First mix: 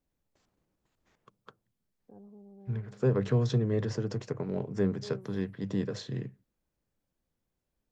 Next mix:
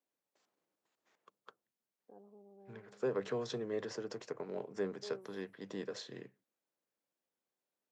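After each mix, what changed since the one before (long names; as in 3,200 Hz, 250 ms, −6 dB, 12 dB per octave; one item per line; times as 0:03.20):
second voice −3.5 dB
master: add high-pass filter 390 Hz 12 dB per octave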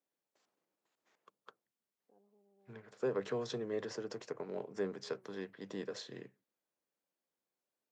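first voice −12.0 dB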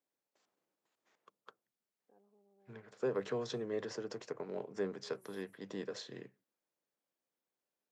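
first voice: remove moving average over 20 samples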